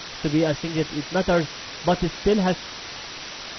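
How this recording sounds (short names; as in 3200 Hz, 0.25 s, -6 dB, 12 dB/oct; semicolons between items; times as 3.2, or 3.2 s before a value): a quantiser's noise floor 6-bit, dither triangular; MP2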